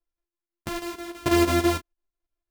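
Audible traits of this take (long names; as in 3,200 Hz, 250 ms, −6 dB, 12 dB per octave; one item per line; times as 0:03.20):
a buzz of ramps at a fixed pitch in blocks of 128 samples
chopped level 6.1 Hz, depth 65%, duty 75%
a shimmering, thickened sound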